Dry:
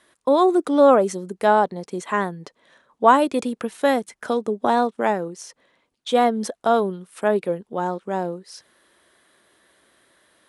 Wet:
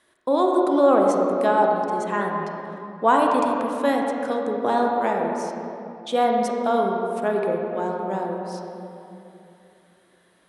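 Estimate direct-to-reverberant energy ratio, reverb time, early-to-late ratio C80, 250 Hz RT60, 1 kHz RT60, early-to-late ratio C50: 0.0 dB, 2.9 s, 2.0 dB, 3.3 s, 2.8 s, 1.0 dB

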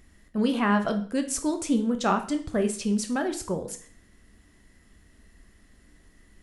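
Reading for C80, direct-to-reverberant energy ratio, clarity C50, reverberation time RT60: 16.0 dB, 6.0 dB, 12.0 dB, 0.45 s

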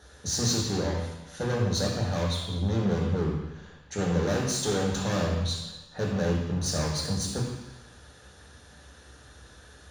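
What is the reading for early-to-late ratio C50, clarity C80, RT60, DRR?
2.0 dB, 4.0 dB, 1.1 s, -2.5 dB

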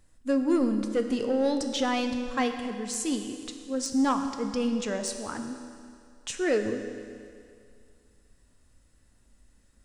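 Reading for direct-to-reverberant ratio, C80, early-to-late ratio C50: 5.5 dB, 8.0 dB, 7.0 dB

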